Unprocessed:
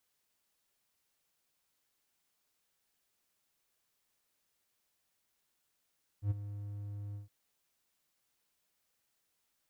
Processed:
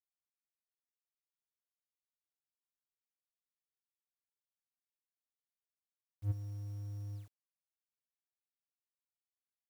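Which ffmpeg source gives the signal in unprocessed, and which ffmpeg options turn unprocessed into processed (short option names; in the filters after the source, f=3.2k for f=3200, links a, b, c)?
-f lavfi -i "aevalsrc='0.0596*(1-4*abs(mod(102*t+0.25,1)-0.5))':d=1.064:s=44100,afade=t=in:d=0.086,afade=t=out:st=0.086:d=0.022:silence=0.224,afade=t=out:st=0.93:d=0.134"
-af "acrusher=bits=10:mix=0:aa=0.000001"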